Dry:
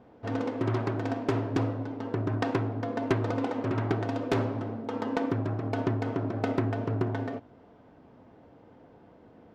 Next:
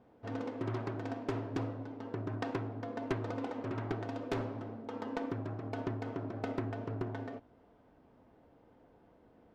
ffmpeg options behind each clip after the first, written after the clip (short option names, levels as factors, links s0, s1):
-af "asubboost=boost=3:cutoff=56,volume=0.398"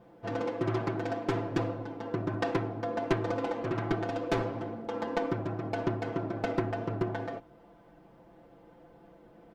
-af "aecho=1:1:5.9:0.84,volume=1.78"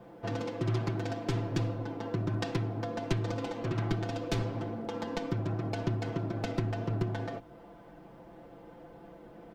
-filter_complex "[0:a]acrossover=split=200|3000[s0][s1][s2];[s1]acompressor=threshold=0.00794:ratio=4[s3];[s0][s3][s2]amix=inputs=3:normalize=0,volume=1.78"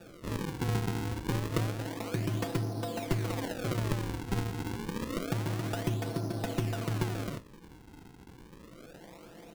-af "acrusher=samples=42:mix=1:aa=0.000001:lfo=1:lforange=67.2:lforate=0.28"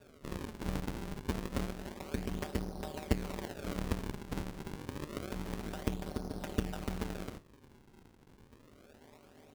-af "aeval=exprs='0.168*(cos(1*acos(clip(val(0)/0.168,-1,1)))-cos(1*PI/2))+0.0335*(cos(3*acos(clip(val(0)/0.168,-1,1)))-cos(3*PI/2))+0.00668*(cos(8*acos(clip(val(0)/0.168,-1,1)))-cos(8*PI/2))':c=same,aeval=exprs='val(0)*sin(2*PI*75*n/s)':c=same,volume=1.41"